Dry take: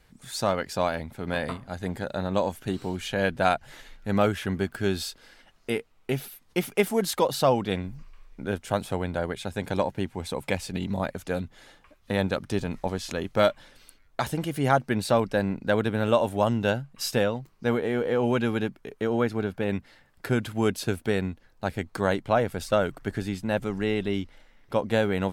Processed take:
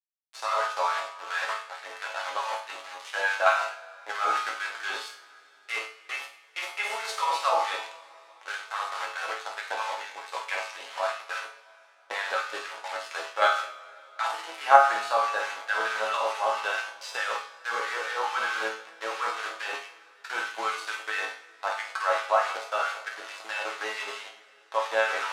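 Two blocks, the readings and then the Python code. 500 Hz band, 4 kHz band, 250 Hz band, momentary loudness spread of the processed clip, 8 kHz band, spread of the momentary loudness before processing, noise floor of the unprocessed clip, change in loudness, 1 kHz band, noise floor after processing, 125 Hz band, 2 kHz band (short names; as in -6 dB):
-7.0 dB, +0.5 dB, -27.5 dB, 13 LU, -2.5 dB, 9 LU, -60 dBFS, -1.5 dB, +4.5 dB, -56 dBFS, under -40 dB, +5.0 dB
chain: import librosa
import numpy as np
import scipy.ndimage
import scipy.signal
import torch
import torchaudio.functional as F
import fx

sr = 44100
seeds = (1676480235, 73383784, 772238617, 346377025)

p1 = fx.peak_eq(x, sr, hz=1200.0, db=8.5, octaves=1.4)
p2 = p1 + fx.room_flutter(p1, sr, wall_m=8.8, rt60_s=0.56, dry=0)
p3 = np.where(np.abs(p2) >= 10.0 ** (-26.0 / 20.0), p2, 0.0)
p4 = fx.bandpass_edges(p3, sr, low_hz=400.0, high_hz=6800.0)
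p5 = fx.level_steps(p4, sr, step_db=15)
p6 = p4 + (p5 * 10.0 ** (2.0 / 20.0))
p7 = fx.filter_lfo_highpass(p6, sr, shape='sine', hz=4.6, low_hz=600.0, high_hz=1600.0, q=1.1)
p8 = fx.resonator_bank(p7, sr, root=45, chord='major', decay_s=0.41)
p9 = fx.rev_double_slope(p8, sr, seeds[0], early_s=0.36, late_s=3.6, knee_db=-18, drr_db=8.0)
y = p9 * 10.0 ** (7.0 / 20.0)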